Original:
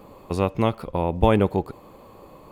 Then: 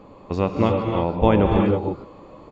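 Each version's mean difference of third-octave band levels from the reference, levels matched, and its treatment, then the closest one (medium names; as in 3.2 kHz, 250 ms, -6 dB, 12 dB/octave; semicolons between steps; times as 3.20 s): 6.0 dB: peaking EQ 270 Hz +3 dB 0.38 oct; gated-style reverb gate 350 ms rising, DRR 1 dB; resampled via 16 kHz; treble shelf 6.2 kHz -9.5 dB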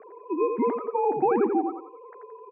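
12.5 dB: formants replaced by sine waves; compression, threshold -19 dBFS, peak gain reduction 7 dB; on a send: feedback delay 86 ms, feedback 33%, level -5.5 dB; on the sum: mistuned SSB -61 Hz 300–2100 Hz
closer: first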